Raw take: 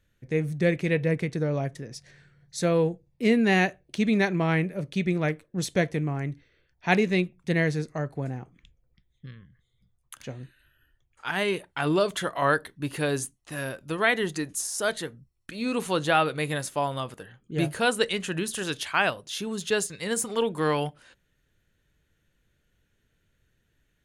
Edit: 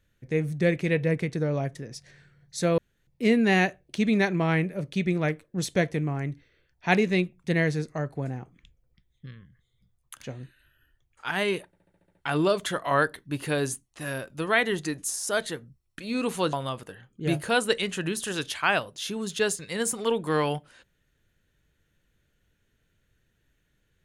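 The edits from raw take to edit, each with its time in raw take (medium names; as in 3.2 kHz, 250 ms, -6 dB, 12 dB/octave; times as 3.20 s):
2.78–3.07 s: room tone
11.66 s: stutter 0.07 s, 8 plays
16.04–16.84 s: delete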